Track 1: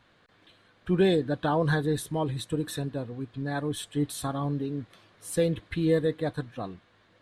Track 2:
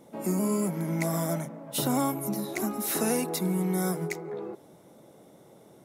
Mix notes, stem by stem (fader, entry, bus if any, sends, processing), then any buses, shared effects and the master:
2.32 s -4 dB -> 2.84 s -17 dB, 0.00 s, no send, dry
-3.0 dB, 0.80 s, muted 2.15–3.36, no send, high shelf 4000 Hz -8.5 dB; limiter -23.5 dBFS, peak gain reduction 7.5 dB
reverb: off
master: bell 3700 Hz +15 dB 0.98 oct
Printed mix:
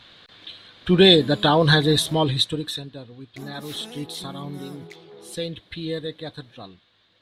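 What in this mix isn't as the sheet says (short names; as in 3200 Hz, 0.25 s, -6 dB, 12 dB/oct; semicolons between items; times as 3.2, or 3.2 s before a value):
stem 1 -4.0 dB -> +7.5 dB; stem 2 -3.0 dB -> -9.5 dB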